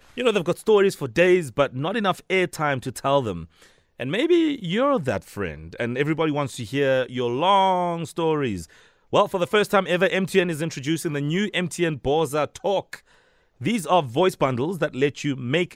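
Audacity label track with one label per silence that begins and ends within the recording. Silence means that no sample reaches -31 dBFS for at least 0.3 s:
3.440000	4.000000	silence
8.640000	9.130000	silence
12.950000	13.610000	silence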